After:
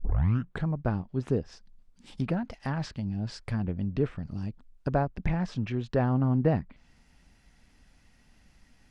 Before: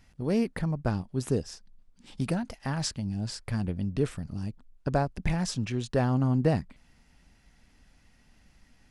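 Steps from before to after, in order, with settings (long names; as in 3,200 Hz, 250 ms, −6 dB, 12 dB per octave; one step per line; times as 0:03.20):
turntable start at the beginning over 0.66 s
treble cut that deepens with the level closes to 2,200 Hz, closed at −26 dBFS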